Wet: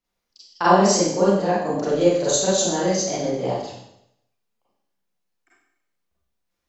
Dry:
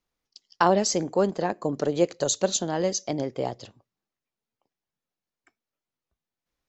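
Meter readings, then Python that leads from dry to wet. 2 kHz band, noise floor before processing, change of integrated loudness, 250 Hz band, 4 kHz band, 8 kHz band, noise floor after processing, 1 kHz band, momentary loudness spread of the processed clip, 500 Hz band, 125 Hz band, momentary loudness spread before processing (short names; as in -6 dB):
+5.5 dB, under -85 dBFS, +5.5 dB, +6.0 dB, +5.5 dB, +5.5 dB, -79 dBFS, +6.0 dB, 9 LU, +5.5 dB, +6.0 dB, 9 LU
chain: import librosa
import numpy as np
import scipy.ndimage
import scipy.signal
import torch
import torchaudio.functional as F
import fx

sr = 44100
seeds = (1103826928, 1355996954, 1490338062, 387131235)

y = fx.rev_schroeder(x, sr, rt60_s=0.76, comb_ms=32, drr_db=-10.0)
y = y * 10.0 ** (-5.0 / 20.0)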